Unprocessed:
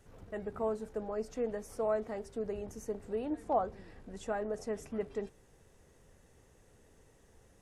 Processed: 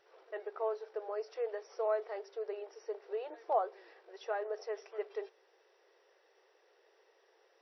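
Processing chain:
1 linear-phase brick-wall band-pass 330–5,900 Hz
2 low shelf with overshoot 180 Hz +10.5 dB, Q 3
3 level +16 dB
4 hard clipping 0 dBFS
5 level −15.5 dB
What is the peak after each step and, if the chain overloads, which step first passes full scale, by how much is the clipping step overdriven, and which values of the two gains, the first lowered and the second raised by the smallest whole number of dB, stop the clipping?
−18.5, −19.5, −3.5, −3.5, −19.0 dBFS
no step passes full scale

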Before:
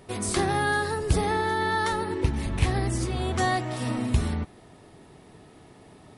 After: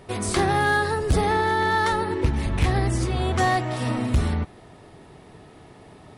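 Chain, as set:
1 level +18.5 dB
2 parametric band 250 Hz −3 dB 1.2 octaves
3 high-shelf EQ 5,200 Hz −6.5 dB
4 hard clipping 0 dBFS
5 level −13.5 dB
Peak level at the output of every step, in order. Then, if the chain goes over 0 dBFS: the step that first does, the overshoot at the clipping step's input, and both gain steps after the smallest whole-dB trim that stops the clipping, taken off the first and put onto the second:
+7.0, +7.0, +7.0, 0.0, −13.5 dBFS
step 1, 7.0 dB
step 1 +11.5 dB, step 5 −6.5 dB

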